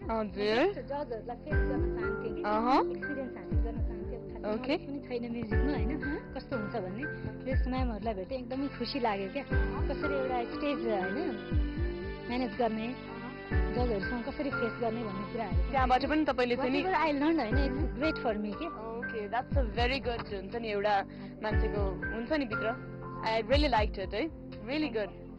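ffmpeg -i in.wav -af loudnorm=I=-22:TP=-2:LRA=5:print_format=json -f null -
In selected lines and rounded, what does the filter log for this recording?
"input_i" : "-32.6",
"input_tp" : "-18.3",
"input_lra" : "3.8",
"input_thresh" : "-42.7",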